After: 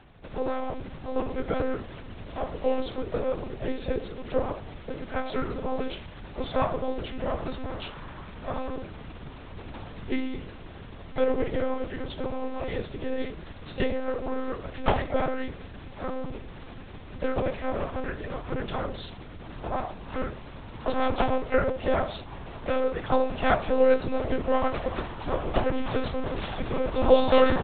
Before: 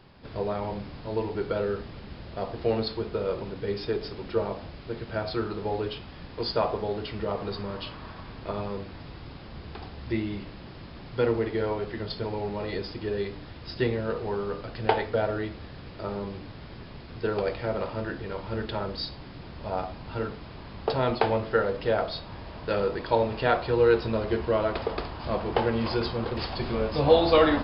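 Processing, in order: harmoniser -5 st -12 dB, +3 st -13 dB, +7 st -10 dB; monotone LPC vocoder at 8 kHz 260 Hz

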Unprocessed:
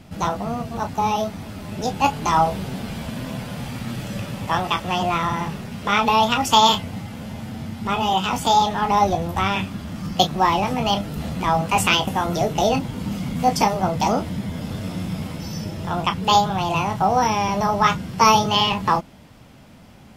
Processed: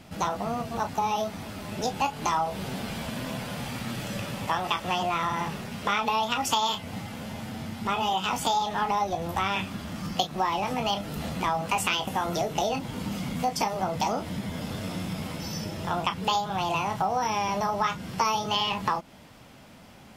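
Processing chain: compressor 6:1, threshold -22 dBFS, peak gain reduction 12 dB; low shelf 270 Hz -7.5 dB

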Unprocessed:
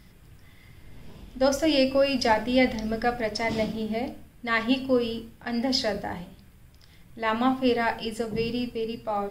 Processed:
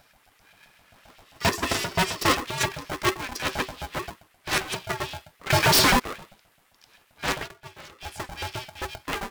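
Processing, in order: LFO high-pass saw up 7.6 Hz 270–2700 Hz; added harmonics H 3 -21 dB, 4 -12 dB, 5 -15 dB, 7 -9 dB, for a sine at -6 dBFS; soft clip -13.5 dBFS, distortion -9 dB; 1.25–2.44 ripple EQ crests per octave 1.7, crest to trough 10 dB; 5.5–6 sample leveller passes 5; 7.37–8.1 dip -17.5 dB, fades 0.12 s; polarity switched at an audio rate 380 Hz

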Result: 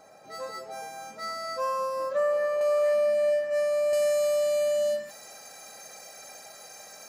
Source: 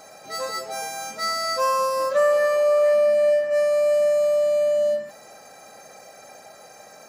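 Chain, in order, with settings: high shelf 2000 Hz -8 dB, from 2.61 s +2 dB, from 3.93 s +11 dB; gain -6 dB

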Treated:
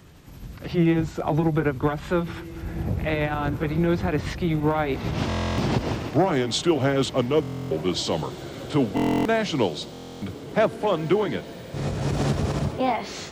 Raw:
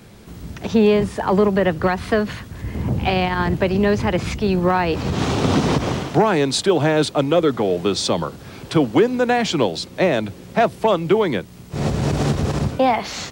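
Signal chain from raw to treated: gliding pitch shift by -4.5 st ending unshifted; diffused feedback echo 1.774 s, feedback 45%, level -15 dB; stuck buffer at 5.28/7.41/8.95/9.92, samples 1024, times 12; gain -4 dB

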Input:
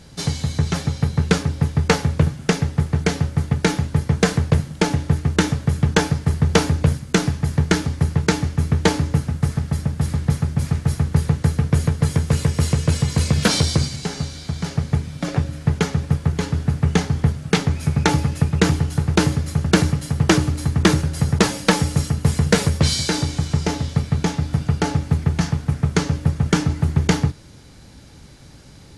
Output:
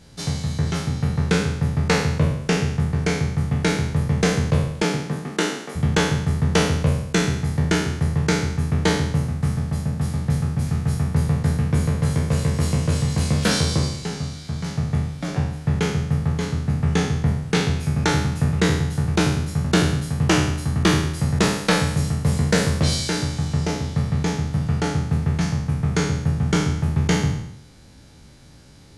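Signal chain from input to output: spectral trails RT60 0.78 s; 4.82–5.75 HPF 120 Hz -> 320 Hz 24 dB/oct; gain -5.5 dB

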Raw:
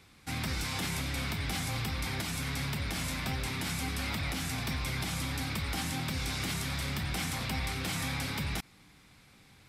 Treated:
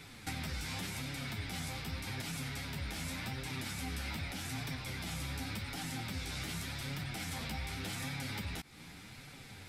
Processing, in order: notch 1100 Hz, Q 8.8; in parallel at +2 dB: limiter -31.5 dBFS, peak gain reduction 9.5 dB; on the sum: compressor 5:1, threshold -39 dBFS, peak gain reduction 11.5 dB; flange 0.86 Hz, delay 6.4 ms, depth 7.7 ms, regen -2%; gain +3.5 dB

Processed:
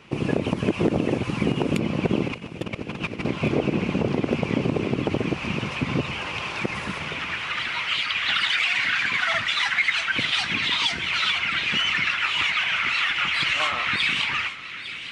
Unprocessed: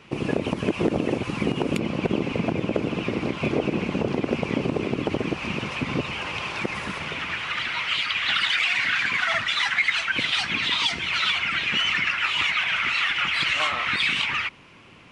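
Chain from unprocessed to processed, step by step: dynamic EQ 120 Hz, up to +4 dB, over -38 dBFS, Q 0.82; 2.28–3.25 negative-ratio compressor -31 dBFS, ratio -0.5; on a send: thin delay 0.855 s, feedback 56%, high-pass 1500 Hz, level -12 dB

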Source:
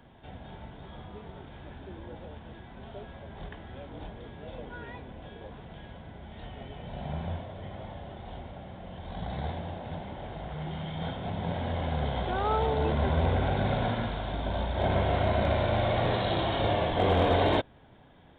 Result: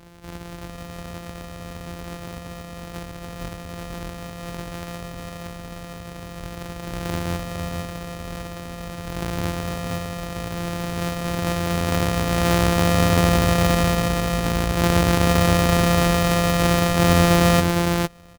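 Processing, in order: sample sorter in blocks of 256 samples; echo 0.457 s -4.5 dB; gain +8 dB

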